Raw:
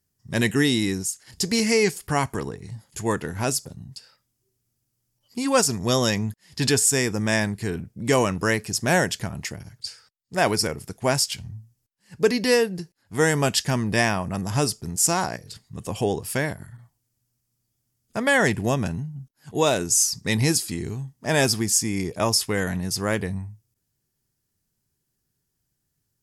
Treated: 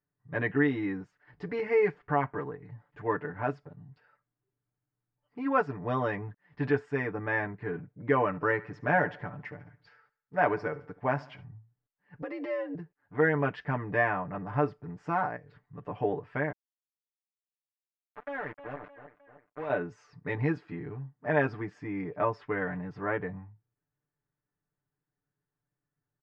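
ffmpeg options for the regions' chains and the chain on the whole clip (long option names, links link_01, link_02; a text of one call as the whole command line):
ffmpeg -i in.wav -filter_complex "[0:a]asettb=1/sr,asplit=3[link_01][link_02][link_03];[link_01]atrim=end=8.264[link_04];[link_02]atrim=start=8.26:end=11.44,asetpts=PTS-STARTPTS,afade=type=in:duration=0.004:curve=qsin,afade=type=out:start_time=3.176:duration=0.004:curve=qsin,equalizer=frequency=6000:width_type=o:width=0.7:gain=4.5,aecho=1:1:71|142|213|284:0.106|0.0519|0.0254|0.0125,atrim=end_sample=140238[link_05];[link_03]atrim=start=11.436[link_06];[link_04][link_05]acrossfade=duration=0.004:curve1=hsin:curve2=qsin[link_07];[link_07][link_06]acrossfade=duration=0.004:curve1=qsin:curve2=hsin,asettb=1/sr,asplit=3[link_08][link_09][link_10];[link_08]atrim=end=12.224[link_11];[link_09]atrim=start=12.22:end=12.75,asetpts=PTS-STARTPTS,afade=type=in:duration=0.004:curve=qsin,afade=type=out:start_time=0.526:duration=0.004:curve=qsin,highshelf=frequency=4200:gain=9,acompressor=threshold=-25dB:ratio=5:attack=3.2:release=140:knee=1:detection=peak,afreqshift=91[link_12];[link_10]atrim=start=12.746[link_13];[link_11][link_12]acrossfade=duration=0.004:curve1=hsin:curve2=qsin[link_14];[link_14][link_13]acrossfade=duration=0.004:curve1=qsin:curve2=hsin,asettb=1/sr,asplit=3[link_15][link_16][link_17];[link_15]atrim=end=16.524[link_18];[link_16]atrim=start=16.52:end=19.7,asetpts=PTS-STARTPTS,afade=type=in:duration=0.004:curve=qsin,afade=type=out:start_time=3.176:duration=0.004:curve=qsin,acrusher=bits=2:mix=0:aa=0.5,asplit=2[link_19][link_20];[link_20]adelay=308,lowpass=frequency=3900:poles=1,volume=-23dB,asplit=2[link_21][link_22];[link_22]adelay=308,lowpass=frequency=3900:poles=1,volume=0.5,asplit=2[link_23][link_24];[link_24]adelay=308,lowpass=frequency=3900:poles=1,volume=0.5[link_25];[link_19][link_21][link_23][link_25]amix=inputs=4:normalize=0,atrim=end_sample=140238,volume=25.5dB,asoftclip=hard,volume=-25.5dB[link_26];[link_17]atrim=start=19.696[link_27];[link_18][link_26]acrossfade=duration=0.004:curve1=hsin:curve2=qsin[link_28];[link_28][link_27]acrossfade=duration=0.004:curve1=qsin:curve2=hsin,lowpass=frequency=1800:width=0.5412,lowpass=frequency=1800:width=1.3066,lowshelf=frequency=310:gain=-9.5,aecho=1:1:6.8:0.94,volume=-5dB" out.wav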